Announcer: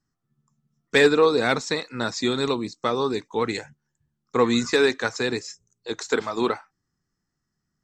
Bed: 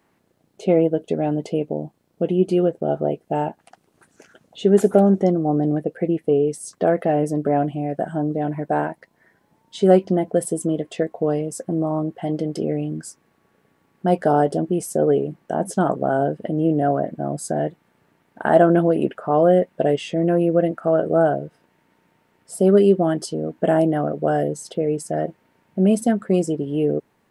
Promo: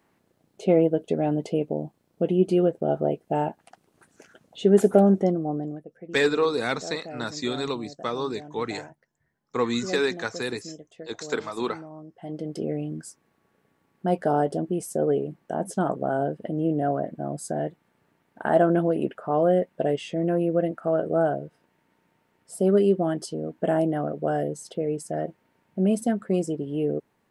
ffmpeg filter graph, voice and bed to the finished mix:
ffmpeg -i stem1.wav -i stem2.wav -filter_complex "[0:a]adelay=5200,volume=-5dB[link_01];[1:a]volume=11.5dB,afade=type=out:start_time=5.09:duration=0.75:silence=0.141254,afade=type=in:start_time=12.08:duration=0.54:silence=0.199526[link_02];[link_01][link_02]amix=inputs=2:normalize=0" out.wav

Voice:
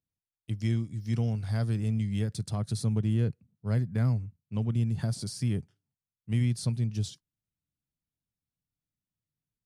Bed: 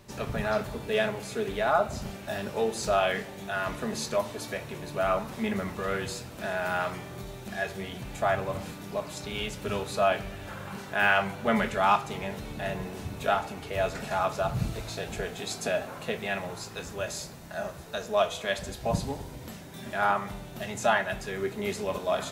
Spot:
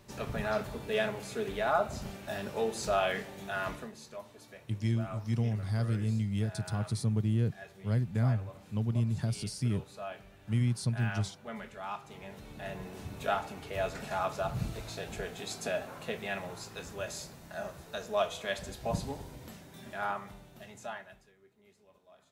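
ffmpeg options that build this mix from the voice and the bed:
ffmpeg -i stem1.wav -i stem2.wav -filter_complex "[0:a]adelay=4200,volume=-2dB[link_01];[1:a]volume=8dB,afade=type=out:start_time=3.69:duration=0.23:silence=0.223872,afade=type=in:start_time=11.91:duration=1.3:silence=0.251189,afade=type=out:start_time=19.24:duration=2.11:silence=0.0421697[link_02];[link_01][link_02]amix=inputs=2:normalize=0" out.wav

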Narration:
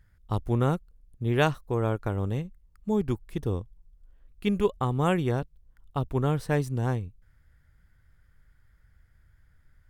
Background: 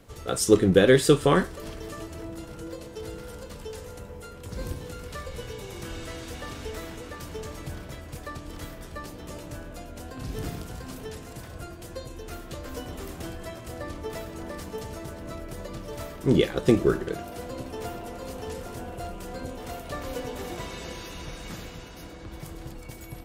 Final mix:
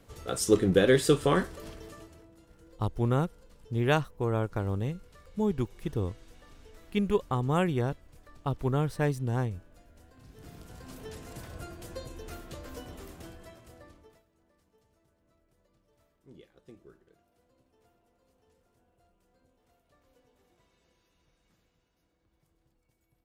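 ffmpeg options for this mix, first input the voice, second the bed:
ffmpeg -i stem1.wav -i stem2.wav -filter_complex "[0:a]adelay=2500,volume=-2dB[link_01];[1:a]volume=11.5dB,afade=type=out:start_time=1.53:duration=0.74:silence=0.188365,afade=type=in:start_time=10.38:duration=0.97:silence=0.158489,afade=type=out:start_time=11.99:duration=2.24:silence=0.0316228[link_02];[link_01][link_02]amix=inputs=2:normalize=0" out.wav

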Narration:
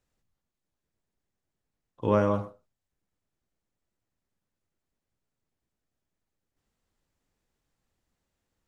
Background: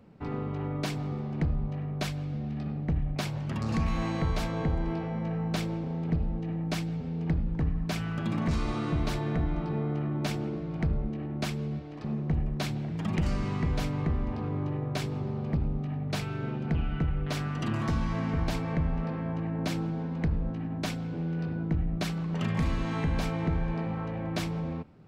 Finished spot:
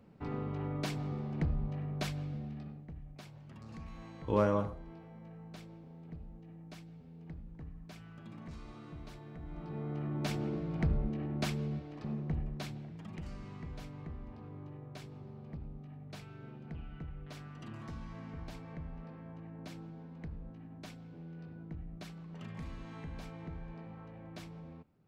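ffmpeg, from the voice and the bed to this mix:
ffmpeg -i stem1.wav -i stem2.wav -filter_complex "[0:a]adelay=2250,volume=-5dB[link_01];[1:a]volume=12dB,afade=type=out:start_time=2.2:duration=0.67:silence=0.188365,afade=type=in:start_time=9.4:duration=1.14:silence=0.149624,afade=type=out:start_time=11.49:duration=1.59:silence=0.211349[link_02];[link_01][link_02]amix=inputs=2:normalize=0" out.wav

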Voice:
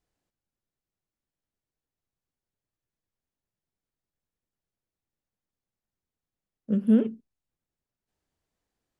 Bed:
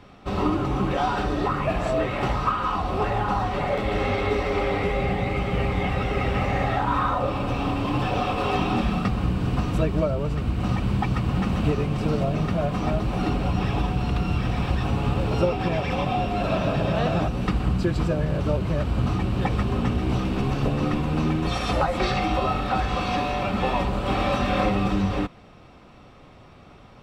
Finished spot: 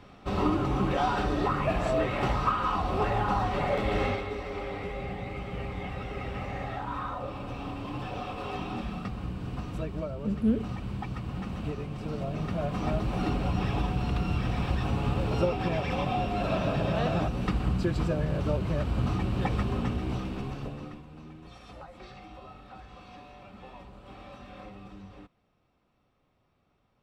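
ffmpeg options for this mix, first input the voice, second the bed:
ffmpeg -i stem1.wav -i stem2.wav -filter_complex "[0:a]adelay=3550,volume=-5.5dB[link_01];[1:a]volume=4dB,afade=type=out:start_time=4.04:duration=0.21:silence=0.375837,afade=type=in:start_time=12.05:duration=0.9:silence=0.446684,afade=type=out:start_time=19.59:duration=1.46:silence=0.112202[link_02];[link_01][link_02]amix=inputs=2:normalize=0" out.wav

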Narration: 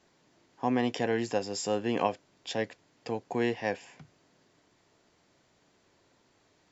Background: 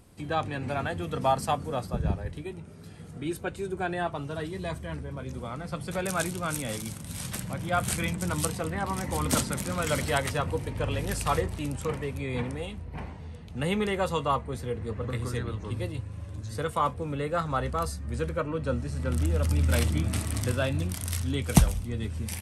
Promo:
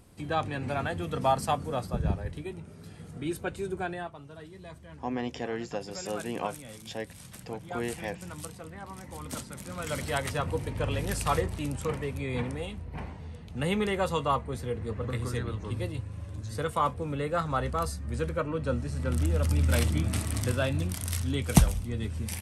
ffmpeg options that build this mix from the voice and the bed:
ffmpeg -i stem1.wav -i stem2.wav -filter_complex "[0:a]adelay=4400,volume=-5dB[link_01];[1:a]volume=11dB,afade=type=out:start_time=3.72:duration=0.41:silence=0.266073,afade=type=in:start_time=9.49:duration=1.11:silence=0.266073[link_02];[link_01][link_02]amix=inputs=2:normalize=0" out.wav

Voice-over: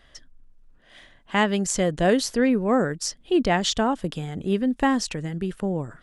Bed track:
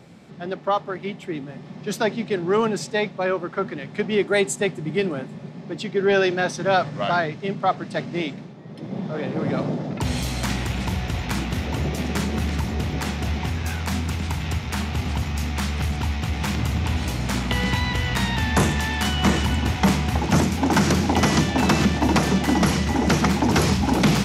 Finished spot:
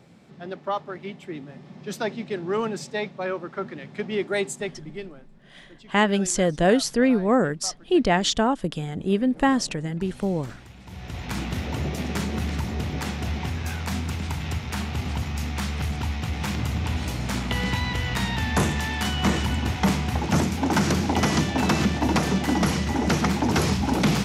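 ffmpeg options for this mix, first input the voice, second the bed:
ffmpeg -i stem1.wav -i stem2.wav -filter_complex "[0:a]adelay=4600,volume=1dB[link_01];[1:a]volume=11.5dB,afade=type=out:start_time=4.41:duration=0.8:silence=0.188365,afade=type=in:start_time=10.85:duration=0.6:silence=0.141254[link_02];[link_01][link_02]amix=inputs=2:normalize=0" out.wav

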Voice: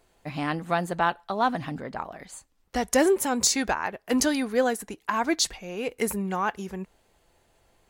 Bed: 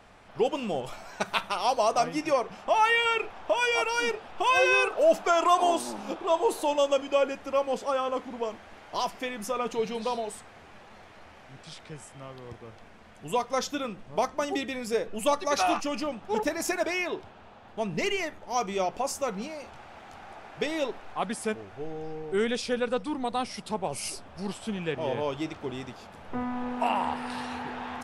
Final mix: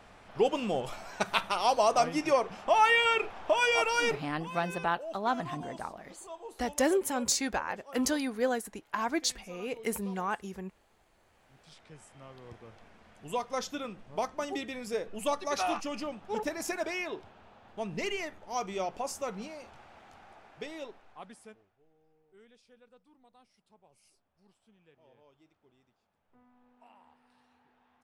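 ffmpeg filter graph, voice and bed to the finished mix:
ffmpeg -i stem1.wav -i stem2.wav -filter_complex "[0:a]adelay=3850,volume=-6dB[link_01];[1:a]volume=14dB,afade=type=out:start_time=4.11:duration=0.29:silence=0.105925,afade=type=in:start_time=11.2:duration=1.33:silence=0.188365,afade=type=out:start_time=19.48:duration=2.29:silence=0.0446684[link_02];[link_01][link_02]amix=inputs=2:normalize=0" out.wav

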